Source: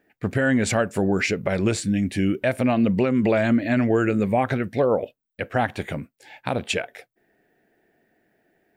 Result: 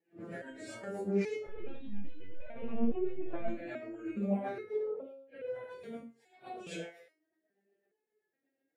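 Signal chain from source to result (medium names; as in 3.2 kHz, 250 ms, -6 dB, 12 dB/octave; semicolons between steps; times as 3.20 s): phase randomisation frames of 200 ms; high-pass 65 Hz 12 dB/octave; peaking EQ 440 Hz +8.5 dB 1.5 oct; de-hum 135.5 Hz, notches 10; peak limiter -10.5 dBFS, peak gain reduction 9 dB; flange 0.64 Hz, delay 2.1 ms, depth 5.7 ms, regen +48%; rotary cabinet horn 8 Hz; 1.46–3.48 s: LPC vocoder at 8 kHz pitch kept; resonator arpeggio 2.4 Hz 170–500 Hz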